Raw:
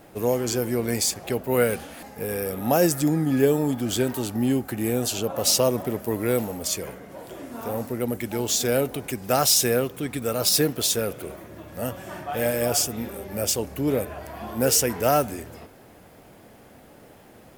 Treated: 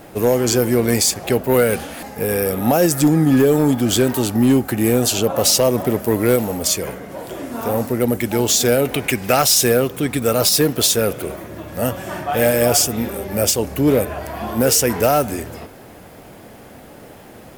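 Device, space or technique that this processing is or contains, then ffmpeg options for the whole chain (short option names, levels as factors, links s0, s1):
limiter into clipper: -filter_complex "[0:a]alimiter=limit=0.237:level=0:latency=1:release=158,asoftclip=type=hard:threshold=0.15,asettb=1/sr,asplit=3[s0][s1][s2];[s0]atrim=end=8.854[s3];[s1]atrim=start=8.85:end=9.42,asetpts=PTS-STARTPTS,afade=t=in:d=0.004:c=qsin,afade=t=out:st=0.566:d=0.004:c=qsin,equalizer=f=2300:t=o:w=1.2:g=8[s4];[s2]atrim=start=9.416[s5];[s3][s4]acrossfade=d=0.004:c1=hsin:c2=qsin[s6];[s6][s5]acrossfade=d=0.004:c1=qsin:c2=hsin,volume=2.82"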